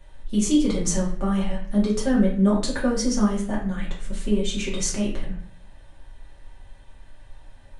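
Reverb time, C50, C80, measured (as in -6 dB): 0.55 s, 6.0 dB, 9.5 dB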